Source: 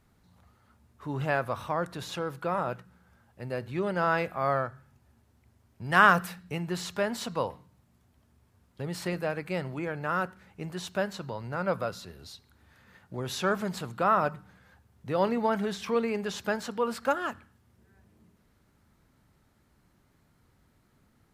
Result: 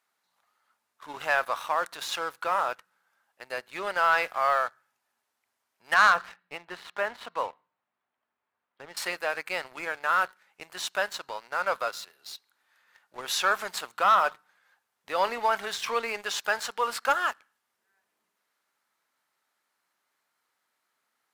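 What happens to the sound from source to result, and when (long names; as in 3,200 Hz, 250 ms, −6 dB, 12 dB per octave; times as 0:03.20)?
0:05.94–0:08.97: high-frequency loss of the air 410 metres
whole clip: high-pass filter 900 Hz 12 dB per octave; leveller curve on the samples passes 2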